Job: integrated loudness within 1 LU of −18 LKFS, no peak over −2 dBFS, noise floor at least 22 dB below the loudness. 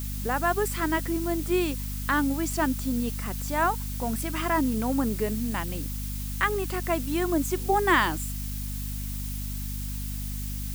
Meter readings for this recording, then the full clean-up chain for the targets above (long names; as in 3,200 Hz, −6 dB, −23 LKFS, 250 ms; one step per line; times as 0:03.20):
mains hum 50 Hz; hum harmonics up to 250 Hz; level of the hum −31 dBFS; background noise floor −32 dBFS; target noise floor −50 dBFS; integrated loudness −28.0 LKFS; sample peak −9.0 dBFS; target loudness −18.0 LKFS
→ mains-hum notches 50/100/150/200/250 Hz
broadband denoise 18 dB, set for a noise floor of −32 dBFS
level +10 dB
brickwall limiter −2 dBFS